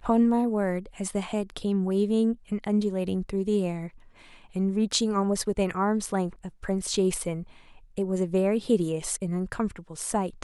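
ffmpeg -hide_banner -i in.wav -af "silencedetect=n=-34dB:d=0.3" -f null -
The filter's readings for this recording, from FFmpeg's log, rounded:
silence_start: 3.88
silence_end: 4.56 | silence_duration: 0.68
silence_start: 7.43
silence_end: 7.98 | silence_duration: 0.55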